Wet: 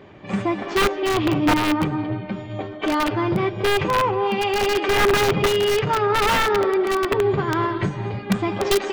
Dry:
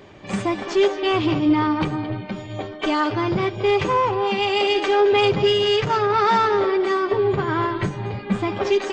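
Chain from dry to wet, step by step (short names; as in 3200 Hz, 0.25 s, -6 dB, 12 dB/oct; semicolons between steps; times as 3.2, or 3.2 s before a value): low shelf 78 Hz -9.5 dB; reverb RT60 0.55 s, pre-delay 0.113 s, DRR 16 dB; wrapped overs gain 12 dB; tone controls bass +4 dB, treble -11 dB, from 7.19 s treble -3 dB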